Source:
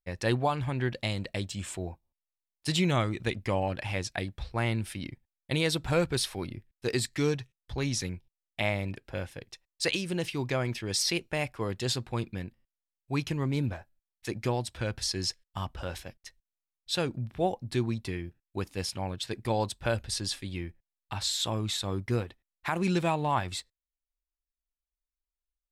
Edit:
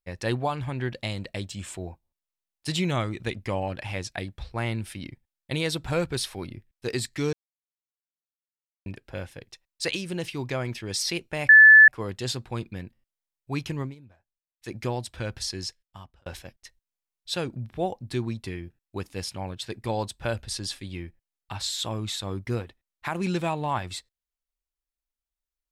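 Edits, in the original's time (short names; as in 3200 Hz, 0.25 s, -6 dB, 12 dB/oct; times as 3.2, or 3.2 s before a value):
7.33–8.86 mute
11.49 add tone 1740 Hz -8 dBFS 0.39 s
13.42–14.34 dip -21 dB, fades 0.14 s
15.03–15.87 fade out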